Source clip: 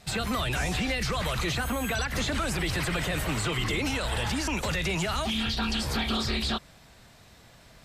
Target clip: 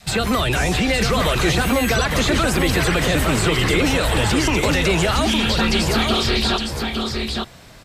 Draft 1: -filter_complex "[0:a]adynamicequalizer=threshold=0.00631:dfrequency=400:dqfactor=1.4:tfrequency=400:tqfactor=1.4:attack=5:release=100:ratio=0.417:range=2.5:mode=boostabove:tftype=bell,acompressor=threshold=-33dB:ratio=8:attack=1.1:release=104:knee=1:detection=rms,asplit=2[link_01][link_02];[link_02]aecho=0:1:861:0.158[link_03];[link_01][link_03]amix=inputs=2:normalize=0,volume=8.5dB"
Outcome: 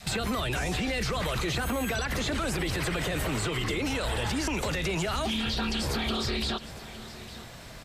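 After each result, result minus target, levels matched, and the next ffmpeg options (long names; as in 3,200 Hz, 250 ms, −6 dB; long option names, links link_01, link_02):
downward compressor: peak gain reduction +13.5 dB; echo-to-direct −11 dB
-filter_complex "[0:a]adynamicequalizer=threshold=0.00631:dfrequency=400:dqfactor=1.4:tfrequency=400:tqfactor=1.4:attack=5:release=100:ratio=0.417:range=2.5:mode=boostabove:tftype=bell,asplit=2[link_01][link_02];[link_02]aecho=0:1:861:0.158[link_03];[link_01][link_03]amix=inputs=2:normalize=0,volume=8.5dB"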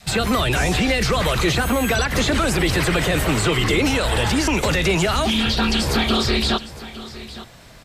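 echo-to-direct −11 dB
-filter_complex "[0:a]adynamicequalizer=threshold=0.00631:dfrequency=400:dqfactor=1.4:tfrequency=400:tqfactor=1.4:attack=5:release=100:ratio=0.417:range=2.5:mode=boostabove:tftype=bell,asplit=2[link_01][link_02];[link_02]aecho=0:1:861:0.562[link_03];[link_01][link_03]amix=inputs=2:normalize=0,volume=8.5dB"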